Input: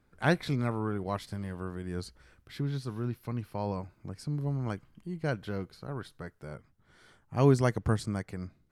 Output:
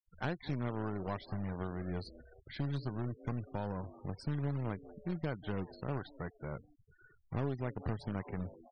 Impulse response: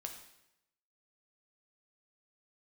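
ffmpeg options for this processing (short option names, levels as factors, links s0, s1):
-filter_complex "[0:a]highshelf=f=4700:g=-7,asplit=5[s0][s1][s2][s3][s4];[s1]adelay=192,afreqshift=150,volume=0.0668[s5];[s2]adelay=384,afreqshift=300,volume=0.038[s6];[s3]adelay=576,afreqshift=450,volume=0.0216[s7];[s4]adelay=768,afreqshift=600,volume=0.0124[s8];[s0][s5][s6][s7][s8]amix=inputs=5:normalize=0,asplit=3[s9][s10][s11];[s9]afade=t=out:st=2.99:d=0.02[s12];[s10]adynamicequalizer=threshold=0.00316:dfrequency=1600:dqfactor=0.82:tfrequency=1600:tqfactor=0.82:attack=5:release=100:ratio=0.375:range=3:mode=cutabove:tftype=bell,afade=t=in:st=2.99:d=0.02,afade=t=out:st=3.68:d=0.02[s13];[s11]afade=t=in:st=3.68:d=0.02[s14];[s12][s13][s14]amix=inputs=3:normalize=0,acompressor=threshold=0.02:ratio=12,aeval=exprs='(tanh(31.6*val(0)+0.55)-tanh(0.55))/31.6':c=same,acrusher=bits=3:mode=log:mix=0:aa=0.000001,afftfilt=real='re*gte(hypot(re,im),0.00282)':imag='im*gte(hypot(re,im),0.00282)':win_size=1024:overlap=0.75,volume=1.58"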